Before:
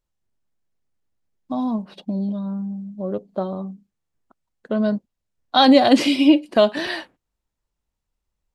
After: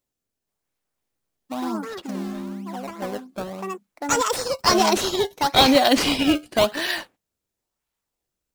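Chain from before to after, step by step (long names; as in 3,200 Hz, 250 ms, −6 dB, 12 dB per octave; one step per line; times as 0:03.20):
spectral tilt +3 dB per octave
in parallel at −3.5 dB: sample-and-hold swept by an LFO 26×, swing 160% 0.98 Hz
on the sum: delay with pitch and tempo change per echo 490 ms, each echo +5 semitones, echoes 2
level −4.5 dB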